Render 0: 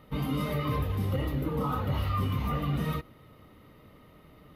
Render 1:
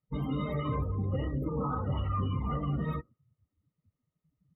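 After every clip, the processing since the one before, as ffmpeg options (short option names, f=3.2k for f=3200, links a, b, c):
-af "afftdn=nr=35:nf=-37,volume=-2dB"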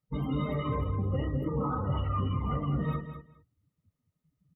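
-af "aecho=1:1:207|414:0.316|0.0506,volume=1dB"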